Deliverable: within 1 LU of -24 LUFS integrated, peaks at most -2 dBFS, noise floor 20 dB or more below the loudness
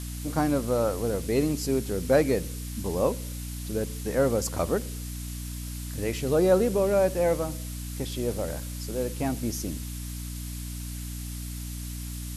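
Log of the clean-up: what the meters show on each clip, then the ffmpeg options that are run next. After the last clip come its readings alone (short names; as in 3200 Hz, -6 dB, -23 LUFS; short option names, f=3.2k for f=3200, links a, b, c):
hum 60 Hz; harmonics up to 300 Hz; hum level -33 dBFS; noise floor -36 dBFS; noise floor target -49 dBFS; loudness -28.5 LUFS; peak -10.0 dBFS; loudness target -24.0 LUFS
-> -af "bandreject=f=60:t=h:w=4,bandreject=f=120:t=h:w=4,bandreject=f=180:t=h:w=4,bandreject=f=240:t=h:w=4,bandreject=f=300:t=h:w=4"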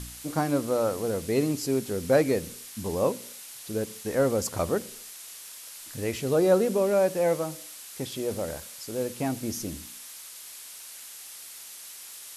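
hum none; noise floor -44 dBFS; noise floor target -48 dBFS
-> -af "afftdn=nr=6:nf=-44"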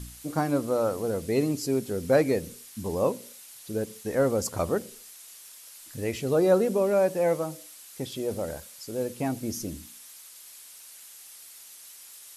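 noise floor -48 dBFS; loudness -27.5 LUFS; peak -10.0 dBFS; loudness target -24.0 LUFS
-> -af "volume=3.5dB"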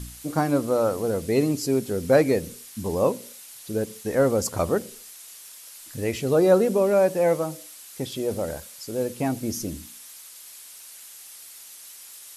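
loudness -24.0 LUFS; peak -6.5 dBFS; noise floor -45 dBFS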